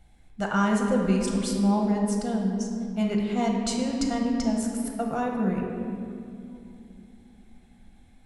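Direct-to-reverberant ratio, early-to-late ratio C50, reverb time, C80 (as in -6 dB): -0.5 dB, 2.0 dB, 2.7 s, 3.5 dB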